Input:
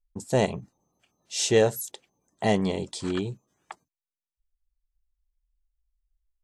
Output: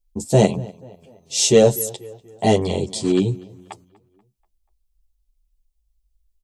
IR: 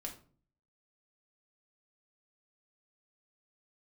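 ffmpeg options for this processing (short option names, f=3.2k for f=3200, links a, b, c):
-filter_complex "[0:a]equalizer=f=1.5k:w=1.2:g=-13,acontrast=73,asplit=2[a][b];[b]adelay=242,lowpass=f=2.9k:p=1,volume=-21.5dB,asplit=2[c][d];[d]adelay=242,lowpass=f=2.9k:p=1,volume=0.51,asplit=2[e][f];[f]adelay=242,lowpass=f=2.9k:p=1,volume=0.51,asplit=2[g][h];[h]adelay=242,lowpass=f=2.9k:p=1,volume=0.51[i];[a][c][e][g][i]amix=inputs=5:normalize=0,asplit=2[j][k];[k]adelay=10,afreqshift=-0.75[l];[j][l]amix=inputs=2:normalize=1,volume=6dB"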